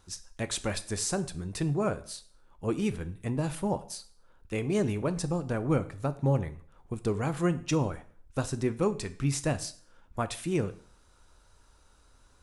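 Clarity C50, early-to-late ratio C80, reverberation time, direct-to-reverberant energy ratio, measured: 16.5 dB, 20.0 dB, 0.50 s, 11.5 dB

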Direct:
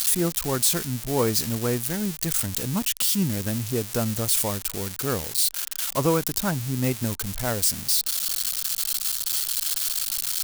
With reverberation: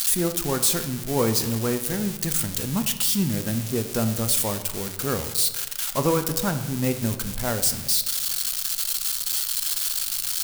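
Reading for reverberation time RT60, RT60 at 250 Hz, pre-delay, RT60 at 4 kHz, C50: 1.3 s, 1.2 s, 4 ms, 0.80 s, 10.5 dB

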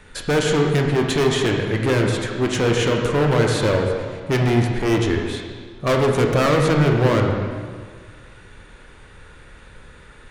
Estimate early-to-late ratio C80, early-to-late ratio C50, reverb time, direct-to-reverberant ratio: 4.5 dB, 3.0 dB, 1.8 s, 1.5 dB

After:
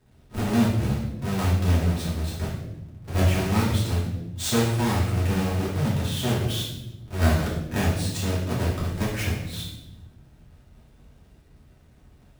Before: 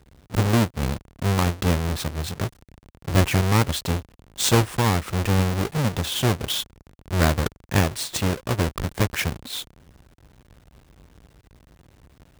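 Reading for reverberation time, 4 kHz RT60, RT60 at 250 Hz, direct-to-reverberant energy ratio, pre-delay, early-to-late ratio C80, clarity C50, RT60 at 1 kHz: 0.95 s, 0.75 s, 1.7 s, −8.0 dB, 3 ms, 5.5 dB, 3.0 dB, 0.75 s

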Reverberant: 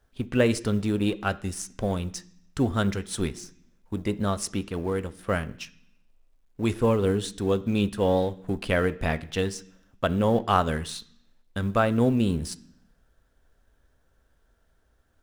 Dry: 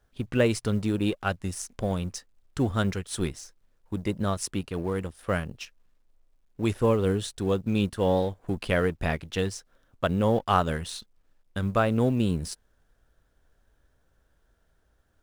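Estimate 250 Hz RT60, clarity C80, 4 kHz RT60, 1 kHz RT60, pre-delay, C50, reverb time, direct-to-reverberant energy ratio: 0.95 s, 21.5 dB, 0.80 s, 0.65 s, 3 ms, 19.0 dB, 0.60 s, 12.0 dB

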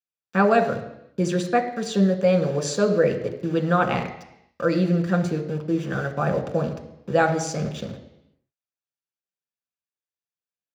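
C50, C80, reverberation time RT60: 10.0 dB, 12.0 dB, 0.85 s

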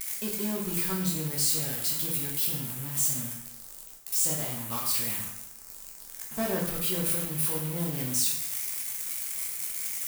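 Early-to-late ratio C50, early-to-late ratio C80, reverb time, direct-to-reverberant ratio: 4.0 dB, 6.5 dB, 0.80 s, −3.0 dB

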